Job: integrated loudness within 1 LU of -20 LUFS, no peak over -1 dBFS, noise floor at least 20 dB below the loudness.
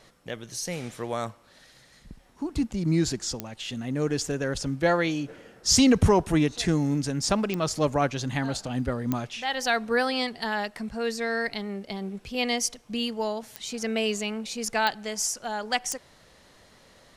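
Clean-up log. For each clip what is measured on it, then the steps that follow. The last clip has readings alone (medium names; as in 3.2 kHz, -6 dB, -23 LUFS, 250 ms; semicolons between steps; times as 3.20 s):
clicks found 6; loudness -27.0 LUFS; peak level -9.0 dBFS; loudness target -20.0 LUFS
-> de-click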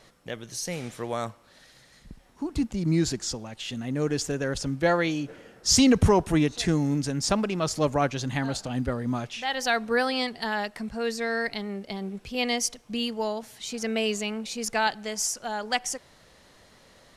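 clicks found 0; loudness -27.0 LUFS; peak level -9.0 dBFS; loudness target -20.0 LUFS
-> trim +7 dB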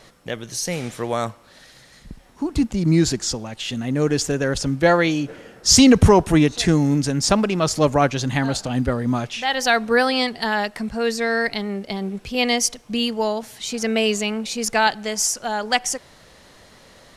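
loudness -20.0 LUFS; peak level -2.0 dBFS; noise floor -50 dBFS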